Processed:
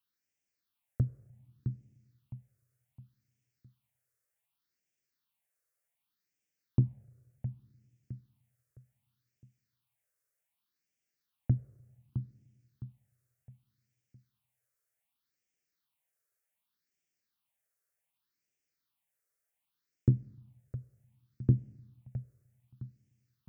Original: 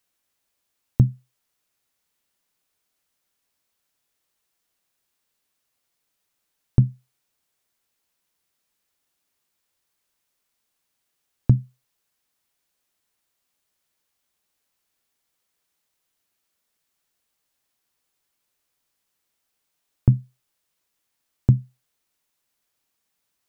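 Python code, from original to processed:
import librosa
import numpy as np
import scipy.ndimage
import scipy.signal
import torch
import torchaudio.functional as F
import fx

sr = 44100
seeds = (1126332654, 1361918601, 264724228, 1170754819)

p1 = scipy.signal.sosfilt(scipy.signal.butter(2, 76.0, 'highpass', fs=sr, output='sos'), x)
p2 = p1 + fx.echo_feedback(p1, sr, ms=662, feedback_pct=37, wet_db=-10.0, dry=0)
p3 = fx.rev_schroeder(p2, sr, rt60_s=1.5, comb_ms=33, drr_db=18.5)
p4 = fx.phaser_stages(p3, sr, stages=6, low_hz=230.0, high_hz=1100.0, hz=0.66, feedback_pct=20)
p5 = fx.doppler_dist(p4, sr, depth_ms=0.68)
y = p5 * librosa.db_to_amplitude(-8.0)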